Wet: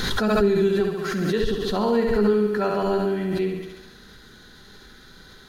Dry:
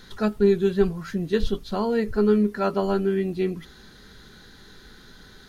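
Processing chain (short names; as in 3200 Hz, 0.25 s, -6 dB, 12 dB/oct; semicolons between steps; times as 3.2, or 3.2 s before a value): 0.8–1.44 low shelf 130 Hz -11.5 dB; on a send: thinning echo 69 ms, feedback 68%, high-pass 170 Hz, level -4 dB; on the sum: backwards sustainer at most 22 dB/s; gain -1.5 dB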